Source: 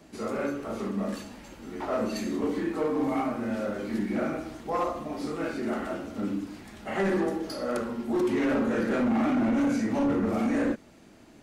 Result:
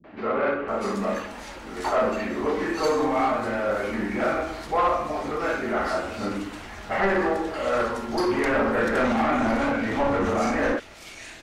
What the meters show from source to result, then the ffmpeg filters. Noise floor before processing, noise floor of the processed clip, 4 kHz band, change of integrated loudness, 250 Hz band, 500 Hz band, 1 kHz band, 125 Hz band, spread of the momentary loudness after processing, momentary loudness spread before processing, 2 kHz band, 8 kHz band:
−53 dBFS, −42 dBFS, +7.0 dB, +4.0 dB, −0.5 dB, +5.5 dB, +9.0 dB, +1.5 dB, 8 LU, 10 LU, +9.5 dB, +4.5 dB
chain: -filter_complex "[0:a]acrossover=split=240|2900[link_01][link_02][link_03];[link_02]adelay=40[link_04];[link_03]adelay=680[link_05];[link_01][link_04][link_05]amix=inputs=3:normalize=0,asubboost=boost=5.5:cutoff=85,asplit=2[link_06][link_07];[link_07]highpass=frequency=720:poles=1,volume=15dB,asoftclip=type=tanh:threshold=-15.5dB[link_08];[link_06][link_08]amix=inputs=2:normalize=0,lowpass=frequency=3000:poles=1,volume=-6dB,volume=3.5dB"

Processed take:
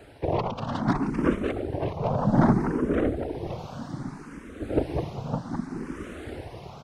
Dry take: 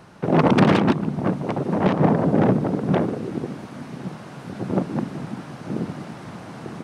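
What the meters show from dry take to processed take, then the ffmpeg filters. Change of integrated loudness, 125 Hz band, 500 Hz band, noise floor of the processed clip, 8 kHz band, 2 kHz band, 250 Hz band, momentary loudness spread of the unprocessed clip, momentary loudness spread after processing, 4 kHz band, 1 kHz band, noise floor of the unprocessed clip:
−6.5 dB, −5.5 dB, −5.5 dB, −45 dBFS, can't be measured, −7.0 dB, −6.0 dB, 19 LU, 16 LU, −9.0 dB, −5.5 dB, −40 dBFS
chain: -filter_complex "[0:a]tremolo=f=0.81:d=0.82,aecho=1:1:562:0.596,afftfilt=real='hypot(re,im)*cos(2*PI*random(0))':imag='hypot(re,im)*sin(2*PI*random(1))':win_size=512:overlap=0.75,equalizer=frequency=190:width_type=o:width=0.36:gain=-4.5,asplit=2[link_01][link_02];[link_02]afreqshift=0.64[link_03];[link_01][link_03]amix=inputs=2:normalize=1,volume=8dB"

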